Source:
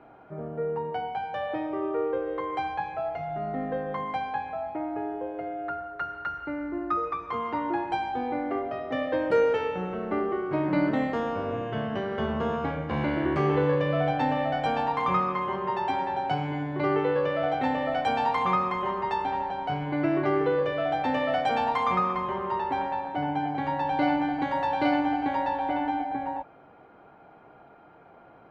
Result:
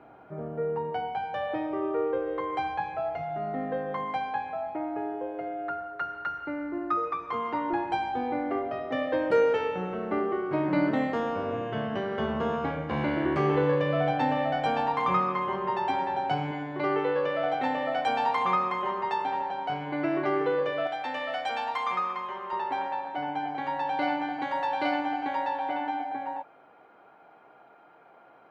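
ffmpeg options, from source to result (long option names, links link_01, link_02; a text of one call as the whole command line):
ffmpeg -i in.wav -af "asetnsamples=nb_out_samples=441:pad=0,asendcmd='3.23 highpass f 150;7.73 highpass f 47;8.87 highpass f 110;16.51 highpass f 330;20.87 highpass f 1300;22.53 highpass f 570',highpass=frequency=40:poles=1" out.wav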